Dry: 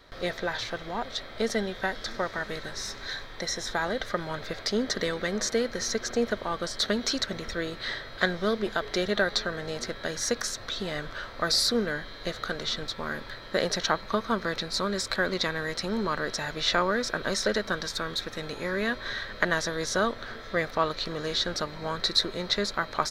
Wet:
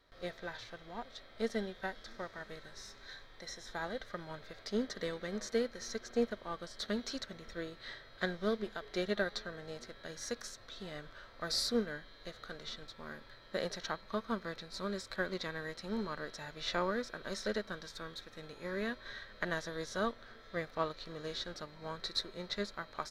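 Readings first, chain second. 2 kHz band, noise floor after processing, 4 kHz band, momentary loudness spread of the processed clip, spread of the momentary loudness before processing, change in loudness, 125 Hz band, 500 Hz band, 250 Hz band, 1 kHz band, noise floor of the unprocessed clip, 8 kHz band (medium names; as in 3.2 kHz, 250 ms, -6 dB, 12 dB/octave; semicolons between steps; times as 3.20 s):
-12.0 dB, -57 dBFS, -13.0 dB, 12 LU, 8 LU, -10.5 dB, -10.0 dB, -9.0 dB, -8.0 dB, -11.5 dB, -43 dBFS, -14.0 dB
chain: harmonic-percussive split percussive -6 dB; upward expansion 1.5:1, over -39 dBFS; trim -4.5 dB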